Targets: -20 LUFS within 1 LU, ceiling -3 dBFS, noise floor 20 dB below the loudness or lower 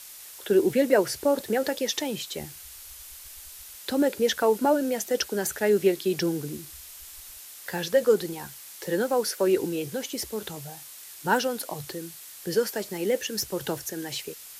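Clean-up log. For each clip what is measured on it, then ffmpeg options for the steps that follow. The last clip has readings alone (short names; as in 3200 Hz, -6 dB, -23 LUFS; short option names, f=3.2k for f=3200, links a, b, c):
noise floor -45 dBFS; noise floor target -47 dBFS; loudness -26.5 LUFS; peak -8.0 dBFS; loudness target -20.0 LUFS
-> -af "afftdn=nr=6:nf=-45"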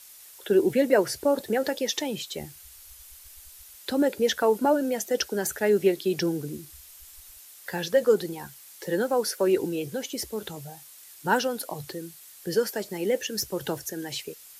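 noise floor -49 dBFS; loudness -26.5 LUFS; peak -8.0 dBFS; loudness target -20.0 LUFS
-> -af "volume=6.5dB,alimiter=limit=-3dB:level=0:latency=1"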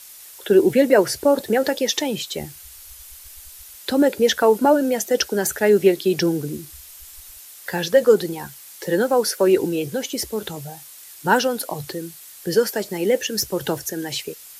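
loudness -20.0 LUFS; peak -3.0 dBFS; noise floor -43 dBFS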